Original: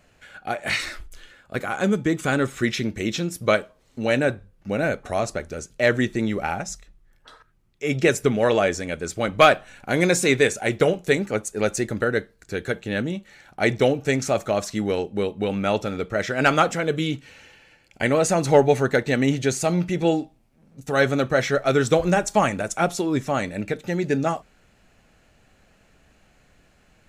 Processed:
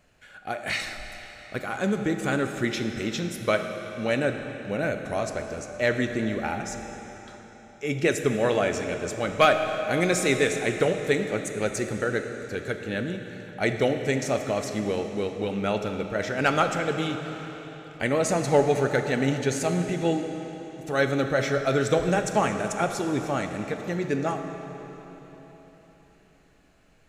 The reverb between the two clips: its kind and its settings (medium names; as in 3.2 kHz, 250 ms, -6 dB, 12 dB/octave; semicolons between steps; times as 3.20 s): algorithmic reverb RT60 4.2 s, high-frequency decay 0.9×, pre-delay 0 ms, DRR 6 dB; trim -4.5 dB